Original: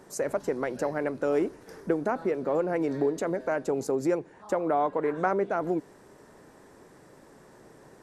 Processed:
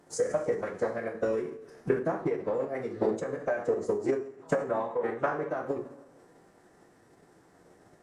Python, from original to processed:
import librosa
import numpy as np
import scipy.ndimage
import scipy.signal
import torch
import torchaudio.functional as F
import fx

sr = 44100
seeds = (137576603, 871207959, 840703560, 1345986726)

y = fx.transient(x, sr, attack_db=11, sustain_db=-4)
y = fx.rev_double_slope(y, sr, seeds[0], early_s=0.51, late_s=1.8, knee_db=-18, drr_db=0.5)
y = fx.pitch_keep_formants(y, sr, semitones=-4.5)
y = y * 10.0 ** (-8.5 / 20.0)